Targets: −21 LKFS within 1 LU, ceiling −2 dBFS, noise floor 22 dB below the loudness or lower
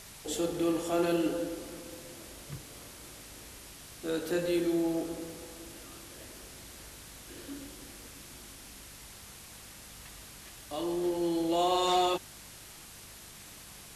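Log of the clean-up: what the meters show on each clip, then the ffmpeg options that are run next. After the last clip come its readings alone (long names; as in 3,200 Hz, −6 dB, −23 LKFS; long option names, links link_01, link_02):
mains hum 50 Hz; hum harmonics up to 200 Hz; level of the hum −58 dBFS; background noise floor −50 dBFS; target noise floor −54 dBFS; integrated loudness −32.0 LKFS; sample peak −15.5 dBFS; target loudness −21.0 LKFS
→ -af "bandreject=frequency=50:width_type=h:width=4,bandreject=frequency=100:width_type=h:width=4,bandreject=frequency=150:width_type=h:width=4,bandreject=frequency=200:width_type=h:width=4"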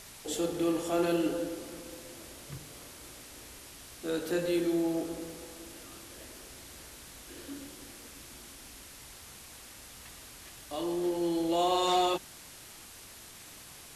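mains hum none found; background noise floor −50 dBFS; target noise floor −54 dBFS
→ -af "afftdn=noise_reduction=6:noise_floor=-50"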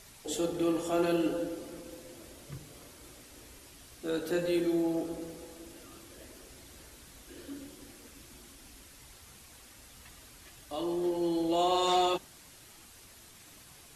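background noise floor −55 dBFS; integrated loudness −31.0 LKFS; sample peak −15.5 dBFS; target loudness −21.0 LKFS
→ -af "volume=10dB"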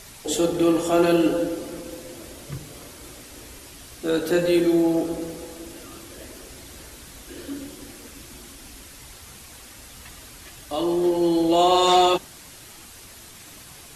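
integrated loudness −21.0 LKFS; sample peak −5.5 dBFS; background noise floor −45 dBFS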